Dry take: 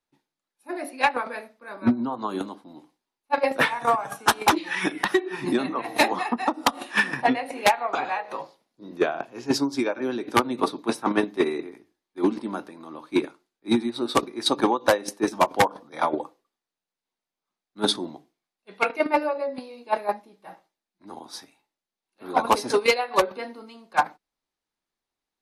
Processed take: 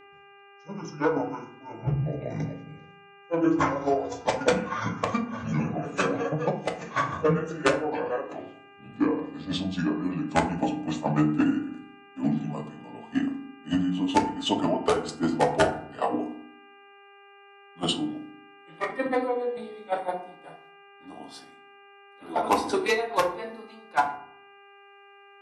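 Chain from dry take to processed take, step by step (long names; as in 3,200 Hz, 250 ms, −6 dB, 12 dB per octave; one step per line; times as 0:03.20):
pitch glide at a constant tempo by −10.5 semitones ending unshifted
hum with harmonics 400 Hz, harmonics 7, −49 dBFS −4 dB per octave
feedback delay network reverb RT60 0.58 s, low-frequency decay 1.45×, high-frequency decay 0.5×, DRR 2.5 dB
level −4 dB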